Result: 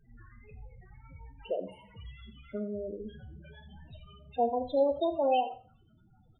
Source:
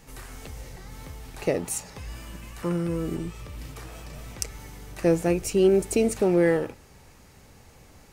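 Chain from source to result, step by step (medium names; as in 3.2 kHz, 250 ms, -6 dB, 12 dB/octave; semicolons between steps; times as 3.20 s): gliding tape speed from 89% -> 165%; FFT filter 300 Hz 0 dB, 3.9 kHz +8 dB, 7.3 kHz -17 dB; flange 0.35 Hz, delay 8.9 ms, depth 1.1 ms, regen +77%; loudest bins only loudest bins 8; delay 83 ms -15 dB; reverberation RT60 0.45 s, pre-delay 6 ms, DRR 8.5 dB; trim -3.5 dB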